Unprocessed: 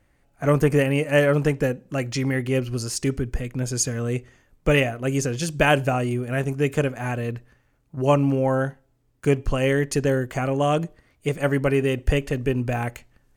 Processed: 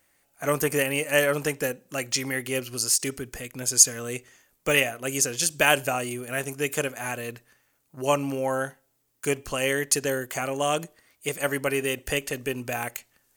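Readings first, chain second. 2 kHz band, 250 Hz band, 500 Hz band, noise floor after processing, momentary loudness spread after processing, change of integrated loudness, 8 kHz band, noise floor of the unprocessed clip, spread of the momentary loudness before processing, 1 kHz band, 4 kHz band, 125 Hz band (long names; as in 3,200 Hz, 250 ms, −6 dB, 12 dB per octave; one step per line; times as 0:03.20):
+0.5 dB, −8.5 dB, −4.5 dB, −70 dBFS, 12 LU, −2.0 dB, +8.5 dB, −64 dBFS, 9 LU, −2.5 dB, +3.5 dB, −13.0 dB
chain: RIAA equalisation recording
every ending faded ahead of time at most 550 dB per second
level −2 dB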